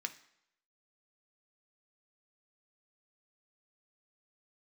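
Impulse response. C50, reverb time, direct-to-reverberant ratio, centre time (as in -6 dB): 14.5 dB, not exponential, 6.5 dB, 6 ms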